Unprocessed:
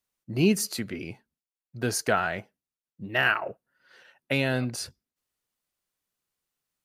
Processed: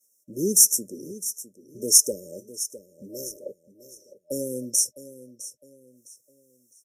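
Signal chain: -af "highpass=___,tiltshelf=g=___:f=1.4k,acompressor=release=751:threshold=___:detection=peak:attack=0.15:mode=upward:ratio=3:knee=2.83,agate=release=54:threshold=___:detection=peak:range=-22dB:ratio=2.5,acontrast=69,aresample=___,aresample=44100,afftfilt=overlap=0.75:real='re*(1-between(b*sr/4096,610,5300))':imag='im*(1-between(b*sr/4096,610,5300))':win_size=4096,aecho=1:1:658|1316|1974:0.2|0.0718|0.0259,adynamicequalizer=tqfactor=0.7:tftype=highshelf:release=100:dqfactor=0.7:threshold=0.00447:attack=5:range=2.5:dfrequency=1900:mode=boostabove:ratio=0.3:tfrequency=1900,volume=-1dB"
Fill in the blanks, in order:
270, -6.5, -42dB, -54dB, 32000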